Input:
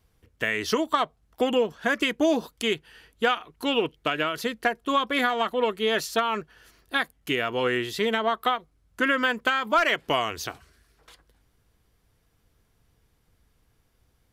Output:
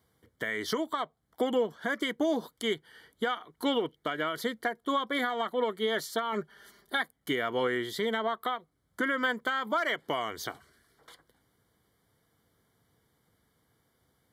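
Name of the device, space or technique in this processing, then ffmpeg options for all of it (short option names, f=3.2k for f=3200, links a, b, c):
PA system with an anti-feedback notch: -filter_complex "[0:a]equalizer=f=5.8k:t=o:w=0.77:g=-4.5,asettb=1/sr,asplit=3[a][b][c];[a]atrim=end=6.324[d];[b]atrim=start=6.32:end=7.02,asetpts=PTS-STARTPTS,afade=t=in:d=0.004:c=qsin,afade=t=out:st=0.696:d=0.004:c=qsin,aecho=1:1:5:0.71,atrim=end_sample=30870[e];[c]atrim=start=7.016[f];[d][e]acrossfade=d=0.004:c1=hsin:c2=qsin[g];[g][f]acrossfade=d=0.004:c1=qsin:c2=hsin,highpass=130,asuperstop=centerf=2600:order=8:qfactor=4.1,alimiter=limit=-19dB:level=0:latency=1:release=435"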